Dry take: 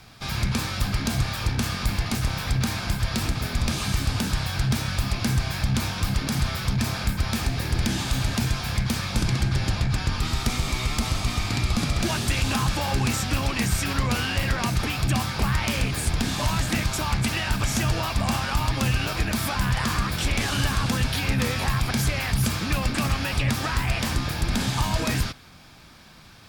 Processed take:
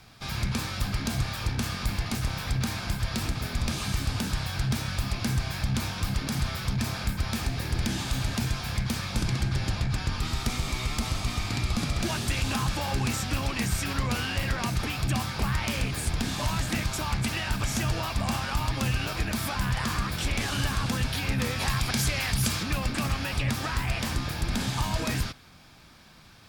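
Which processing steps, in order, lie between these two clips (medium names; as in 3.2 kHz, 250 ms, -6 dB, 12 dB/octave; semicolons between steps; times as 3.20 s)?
21.60–22.63 s: peaking EQ 6.4 kHz +5.5 dB 3 oct; trim -4 dB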